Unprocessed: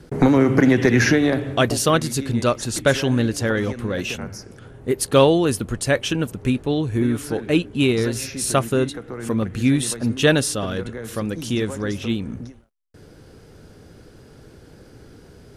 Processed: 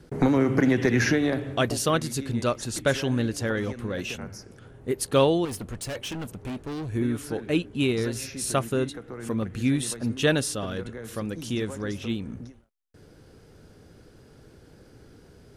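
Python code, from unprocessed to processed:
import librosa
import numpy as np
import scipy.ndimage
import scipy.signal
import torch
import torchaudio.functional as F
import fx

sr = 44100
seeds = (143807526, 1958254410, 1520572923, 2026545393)

y = fx.clip_hard(x, sr, threshold_db=-24.5, at=(5.45, 6.89))
y = y * librosa.db_to_amplitude(-6.0)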